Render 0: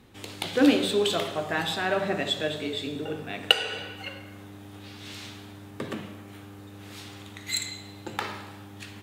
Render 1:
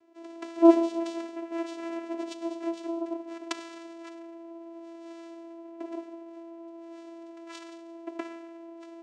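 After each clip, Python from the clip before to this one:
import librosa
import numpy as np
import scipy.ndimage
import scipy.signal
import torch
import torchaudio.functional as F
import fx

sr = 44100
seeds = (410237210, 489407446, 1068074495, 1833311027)

y = fx.vowel_filter(x, sr, vowel='u')
y = fx.bass_treble(y, sr, bass_db=-7, treble_db=13)
y = fx.vocoder(y, sr, bands=4, carrier='saw', carrier_hz=334.0)
y = F.gain(torch.from_numpy(y), 7.5).numpy()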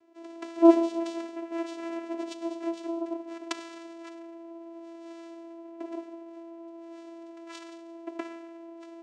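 y = x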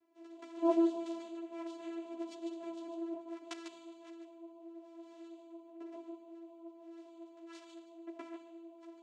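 y = x + 10.0 ** (-6.5 / 20.0) * np.pad(x, (int(147 * sr / 1000.0), 0))[:len(x)]
y = fx.ensemble(y, sr)
y = F.gain(torch.from_numpy(y), -8.0).numpy()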